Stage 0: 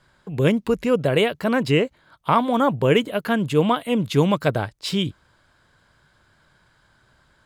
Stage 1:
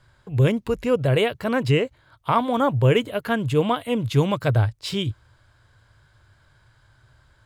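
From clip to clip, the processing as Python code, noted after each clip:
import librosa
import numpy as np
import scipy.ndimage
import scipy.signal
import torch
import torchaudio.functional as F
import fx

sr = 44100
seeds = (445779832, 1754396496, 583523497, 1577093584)

y = fx.low_shelf_res(x, sr, hz=140.0, db=6.0, q=3.0)
y = fx.hpss(y, sr, part='percussive', gain_db=-3)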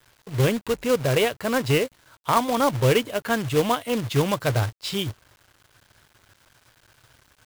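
y = fx.low_shelf(x, sr, hz=170.0, db=-7.0)
y = fx.quant_companded(y, sr, bits=4)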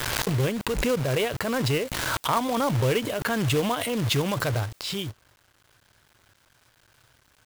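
y = fx.pre_swell(x, sr, db_per_s=21.0)
y = y * 10.0 ** (-5.0 / 20.0)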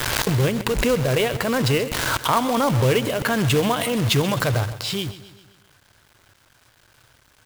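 y = fx.echo_feedback(x, sr, ms=131, feedback_pct=53, wet_db=-15.0)
y = y * 10.0 ** (4.5 / 20.0)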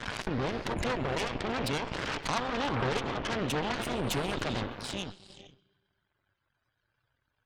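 y = fx.spec_topn(x, sr, count=64)
y = fx.rev_gated(y, sr, seeds[0], gate_ms=500, shape='rising', drr_db=7.5)
y = fx.cheby_harmonics(y, sr, harmonics=(3, 8), levels_db=(-12, -15), full_scale_db=-6.5)
y = y * 10.0 ** (-8.5 / 20.0)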